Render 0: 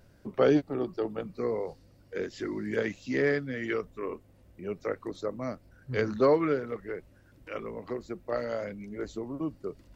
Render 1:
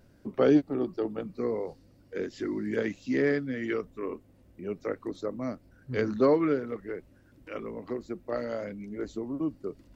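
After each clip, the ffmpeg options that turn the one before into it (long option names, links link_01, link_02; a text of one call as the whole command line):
ffmpeg -i in.wav -af "equalizer=frequency=270:width_type=o:width=0.97:gain=6,volume=-2dB" out.wav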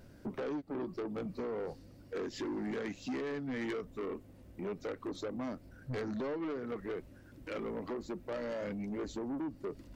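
ffmpeg -i in.wav -af "acompressor=threshold=-32dB:ratio=10,asoftclip=type=tanh:threshold=-37dB,volume=3.5dB" out.wav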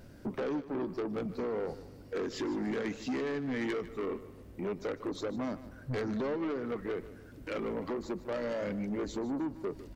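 ffmpeg -i in.wav -af "aecho=1:1:152|304|456|608:0.168|0.0705|0.0296|0.0124,volume=3.5dB" out.wav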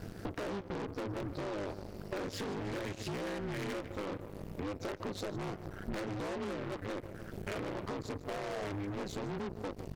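ffmpeg -i in.wav -af "aeval=exprs='0.0398*(cos(1*acos(clip(val(0)/0.0398,-1,1)))-cos(1*PI/2))+0.01*(cos(2*acos(clip(val(0)/0.0398,-1,1)))-cos(2*PI/2))+0.00708*(cos(5*acos(clip(val(0)/0.0398,-1,1)))-cos(5*PI/2))+0.00562*(cos(7*acos(clip(val(0)/0.0398,-1,1)))-cos(7*PI/2))+0.00708*(cos(8*acos(clip(val(0)/0.0398,-1,1)))-cos(8*PI/2))':channel_layout=same,acompressor=threshold=-44dB:ratio=6,aeval=exprs='val(0)*sin(2*PI*100*n/s)':channel_layout=same,volume=9.5dB" out.wav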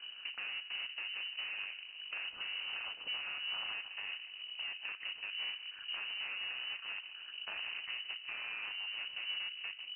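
ffmpeg -i in.wav -af "lowshelf=frequency=100:width_type=q:width=3:gain=-10.5,bandreject=frequency=64.44:width_type=h:width=4,bandreject=frequency=128.88:width_type=h:width=4,bandreject=frequency=193.32:width_type=h:width=4,bandreject=frequency=257.76:width_type=h:width=4,bandreject=frequency=322.2:width_type=h:width=4,bandreject=frequency=386.64:width_type=h:width=4,bandreject=frequency=451.08:width_type=h:width=4,bandreject=frequency=515.52:width_type=h:width=4,bandreject=frequency=579.96:width_type=h:width=4,bandreject=frequency=644.4:width_type=h:width=4,bandreject=frequency=708.84:width_type=h:width=4,bandreject=frequency=773.28:width_type=h:width=4,bandreject=frequency=837.72:width_type=h:width=4,bandreject=frequency=902.16:width_type=h:width=4,bandreject=frequency=966.6:width_type=h:width=4,bandreject=frequency=1031.04:width_type=h:width=4,bandreject=frequency=1095.48:width_type=h:width=4,bandreject=frequency=1159.92:width_type=h:width=4,bandreject=frequency=1224.36:width_type=h:width=4,bandreject=frequency=1288.8:width_type=h:width=4,bandreject=frequency=1353.24:width_type=h:width=4,bandreject=frequency=1417.68:width_type=h:width=4,bandreject=frequency=1482.12:width_type=h:width=4,bandreject=frequency=1546.56:width_type=h:width=4,bandreject=frequency=1611:width_type=h:width=4,bandreject=frequency=1675.44:width_type=h:width=4,bandreject=frequency=1739.88:width_type=h:width=4,bandreject=frequency=1804.32:width_type=h:width=4,lowpass=frequency=2600:width_type=q:width=0.5098,lowpass=frequency=2600:width_type=q:width=0.6013,lowpass=frequency=2600:width_type=q:width=0.9,lowpass=frequency=2600:width_type=q:width=2.563,afreqshift=-3100,volume=-4dB" out.wav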